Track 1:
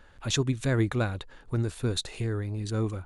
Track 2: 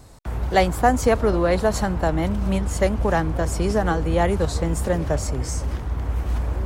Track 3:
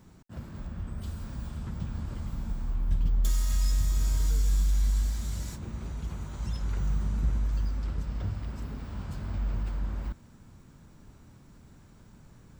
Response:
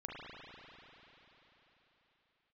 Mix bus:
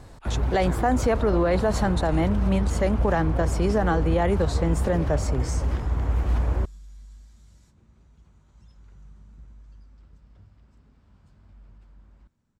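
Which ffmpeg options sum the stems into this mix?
-filter_complex "[0:a]acompressor=threshold=-28dB:ratio=6,volume=-4.5dB[link_01];[1:a]highshelf=frequency=5600:gain=-11,volume=1dB[link_02];[2:a]lowpass=9600,adelay=2150,volume=-20dB[link_03];[link_01][link_02][link_03]amix=inputs=3:normalize=0,alimiter=limit=-13dB:level=0:latency=1:release=27"

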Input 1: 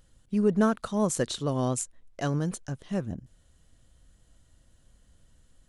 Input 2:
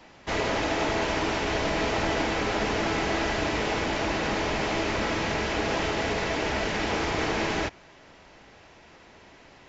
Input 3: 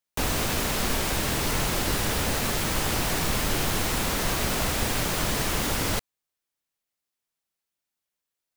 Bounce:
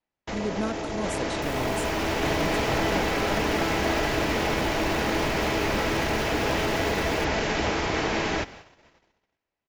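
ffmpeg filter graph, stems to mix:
ffmpeg -i stem1.wav -i stem2.wav -i stem3.wav -filter_complex "[0:a]volume=-7dB[link_01];[1:a]dynaudnorm=framelen=250:gausssize=9:maxgain=7.5dB,volume=0dB,asplit=2[link_02][link_03];[link_03]volume=-6.5dB[link_04];[2:a]adelay=1250,volume=0dB[link_05];[link_02][link_05]amix=inputs=2:normalize=0,acrossover=split=710|5900[link_06][link_07][link_08];[link_06]acompressor=threshold=-23dB:ratio=4[link_09];[link_07]acompressor=threshold=-35dB:ratio=4[link_10];[link_08]acompressor=threshold=-40dB:ratio=4[link_11];[link_09][link_10][link_11]amix=inputs=3:normalize=0,alimiter=limit=-24dB:level=0:latency=1:release=17,volume=0dB[link_12];[link_04]aecho=0:1:754:1[link_13];[link_01][link_12][link_13]amix=inputs=3:normalize=0,agate=range=-37dB:threshold=-43dB:ratio=16:detection=peak" out.wav

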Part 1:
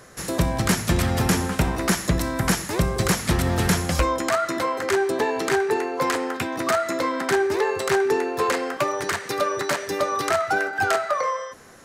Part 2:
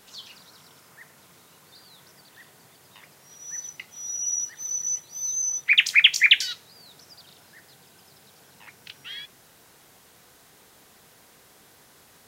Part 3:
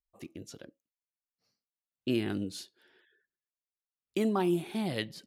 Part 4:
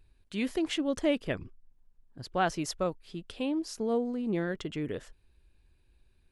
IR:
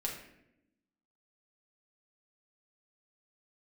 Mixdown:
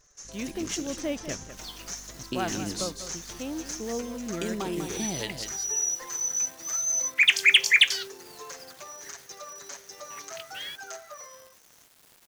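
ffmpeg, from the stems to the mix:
-filter_complex "[0:a]lowpass=frequency=6200:width_type=q:width=10,bass=frequency=250:gain=-14,treble=frequency=4000:gain=2,asplit=2[link_01][link_02];[link_02]adelay=6.2,afreqshift=-1.8[link_03];[link_01][link_03]amix=inputs=2:normalize=1,volume=-19dB[link_04];[1:a]bandreject=frequency=3900:width=12,acrusher=bits=7:mix=0:aa=0.000001,asoftclip=type=tanh:threshold=-8dB,adelay=1500,volume=0dB[link_05];[2:a]equalizer=frequency=6400:width=1:gain=15,acompressor=threshold=-32dB:ratio=6,aeval=exprs='val(0)+0.00224*(sin(2*PI*50*n/s)+sin(2*PI*2*50*n/s)/2+sin(2*PI*3*50*n/s)/3+sin(2*PI*4*50*n/s)/4+sin(2*PI*5*50*n/s)/5)':channel_layout=same,adelay=250,volume=2.5dB,asplit=2[link_06][link_07];[link_07]volume=-8dB[link_08];[3:a]acrusher=bits=8:dc=4:mix=0:aa=0.000001,volume=-4dB,asplit=2[link_09][link_10];[link_10]volume=-11.5dB[link_11];[link_08][link_11]amix=inputs=2:normalize=0,aecho=0:1:196:1[link_12];[link_04][link_05][link_06][link_09][link_12]amix=inputs=5:normalize=0"

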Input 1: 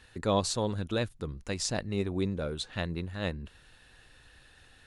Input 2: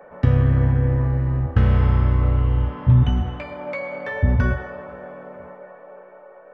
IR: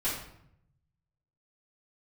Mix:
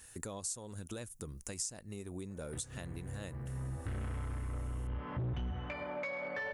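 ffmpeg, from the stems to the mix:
-filter_complex "[0:a]acompressor=threshold=-32dB:ratio=6,aexciter=amount=11.5:drive=2.8:freq=5900,volume=-4.5dB,asplit=2[link_01][link_02];[1:a]equalizer=frequency=2000:width=0.92:gain=4.5,asoftclip=type=tanh:threshold=-18.5dB,adelay=2300,volume=-2.5dB[link_03];[link_02]apad=whole_len=389769[link_04];[link_03][link_04]sidechaincompress=threshold=-57dB:ratio=8:attack=16:release=210[link_05];[link_01][link_05]amix=inputs=2:normalize=0,acompressor=threshold=-40dB:ratio=3"

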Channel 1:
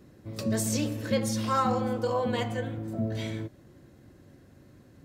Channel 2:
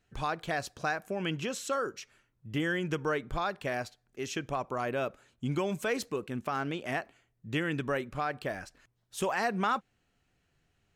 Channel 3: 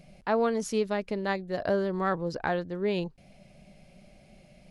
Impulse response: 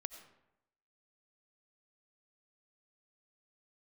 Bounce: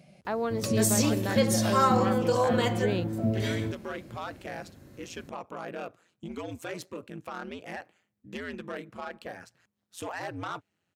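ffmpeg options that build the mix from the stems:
-filter_complex "[0:a]highshelf=frequency=7700:gain=5.5,adelay=250,volume=3dB[link_01];[1:a]asoftclip=type=tanh:threshold=-26dB,aeval=exprs='val(0)*sin(2*PI*87*n/s)':channel_layout=same,adelay=800,volume=-1dB[link_02];[2:a]volume=-1.5dB[link_03];[link_02][link_03]amix=inputs=2:normalize=0,highpass=frequency=88:width=0.5412,highpass=frequency=88:width=1.3066,alimiter=limit=-20dB:level=0:latency=1:release=385,volume=0dB[link_04];[link_01][link_04]amix=inputs=2:normalize=0"

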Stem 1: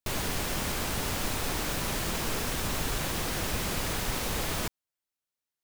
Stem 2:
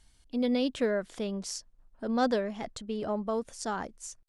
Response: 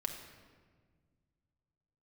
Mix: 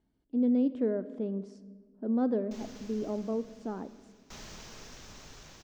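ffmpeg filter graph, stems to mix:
-filter_complex "[0:a]highshelf=frequency=7900:width_type=q:width=3:gain=-10,aeval=exprs='val(0)*pow(10,-22*if(lt(mod(0.54*n/s,1),2*abs(0.54)/1000),1-mod(0.54*n/s,1)/(2*abs(0.54)/1000),(mod(0.54*n/s,1)-2*abs(0.54)/1000)/(1-2*abs(0.54)/1000))/20)':channel_layout=same,adelay=2450,volume=-8dB,asplit=2[link_01][link_02];[link_02]volume=-12dB[link_03];[1:a]bandpass=frequency=290:width_type=q:width=1.6:csg=0,volume=-0.5dB,asplit=3[link_04][link_05][link_06];[link_05]volume=-5.5dB[link_07];[link_06]apad=whole_len=356481[link_08];[link_01][link_08]sidechaincompress=threshold=-56dB:ratio=8:attack=16:release=1290[link_09];[2:a]atrim=start_sample=2205[link_10];[link_03][link_07]amix=inputs=2:normalize=0[link_11];[link_11][link_10]afir=irnorm=-1:irlink=0[link_12];[link_09][link_04][link_12]amix=inputs=3:normalize=0"

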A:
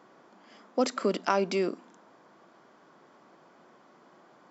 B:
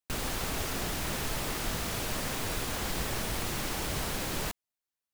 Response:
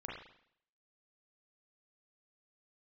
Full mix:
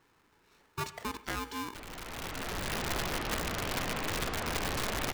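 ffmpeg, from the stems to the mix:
-filter_complex "[0:a]aeval=exprs='val(0)*sgn(sin(2*PI*650*n/s))':channel_layout=same,volume=-12dB,asplit=3[link_01][link_02][link_03];[link_02]volume=-10.5dB[link_04];[1:a]lowpass=2400,bandreject=frequency=60:width_type=h:width=6,bandreject=frequency=120:width_type=h:width=6,bandreject=frequency=180:width_type=h:width=6,bandreject=frequency=240:width_type=h:width=6,bandreject=frequency=300:width_type=h:width=6,bandreject=frequency=360:width_type=h:width=6,bandreject=frequency=420:width_type=h:width=6,bandreject=frequency=480:width_type=h:width=6,bandreject=frequency=540:width_type=h:width=6,aeval=exprs='(mod(26.6*val(0)+1,2)-1)/26.6':channel_layout=same,adelay=1650,volume=1.5dB[link_05];[link_03]apad=whole_len=299201[link_06];[link_05][link_06]sidechaincompress=threshold=-49dB:ratio=6:attack=16:release=1060[link_07];[2:a]atrim=start_sample=2205[link_08];[link_04][link_08]afir=irnorm=-1:irlink=0[link_09];[link_01][link_07][link_09]amix=inputs=3:normalize=0"

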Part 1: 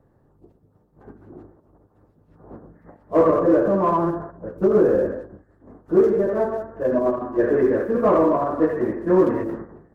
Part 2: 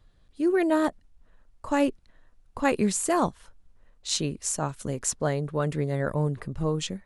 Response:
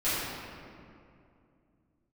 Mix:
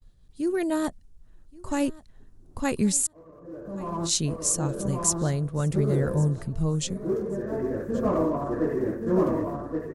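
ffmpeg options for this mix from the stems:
-filter_complex "[0:a]volume=-10dB,afade=type=in:start_time=3.3:duration=0.72:silence=0.354813,asplit=2[link_01][link_02];[link_02]volume=-4dB[link_03];[1:a]volume=-5.5dB,asplit=3[link_04][link_05][link_06];[link_04]atrim=end=3.07,asetpts=PTS-STARTPTS,afade=type=out:start_time=3.066:duration=0.004:curve=hsin[link_07];[link_05]atrim=start=3.07:end=3.8,asetpts=PTS-STARTPTS,volume=0[link_08];[link_06]atrim=start=3.8,asetpts=PTS-STARTPTS,afade=type=in:duration=0.004:curve=hsin[link_09];[link_07][link_08][link_09]concat=n=3:v=0:a=1,asplit=3[link_10][link_11][link_12];[link_11]volume=-22.5dB[link_13];[link_12]apad=whole_len=438367[link_14];[link_01][link_14]sidechaincompress=threshold=-47dB:ratio=16:attack=9:release=806[link_15];[link_03][link_13]amix=inputs=2:normalize=0,aecho=0:1:1126|2252|3378:1|0.21|0.0441[link_16];[link_15][link_10][link_16]amix=inputs=3:normalize=0,bass=frequency=250:gain=11,treble=frequency=4000:gain=11,agate=range=-33dB:threshold=-51dB:ratio=3:detection=peak"

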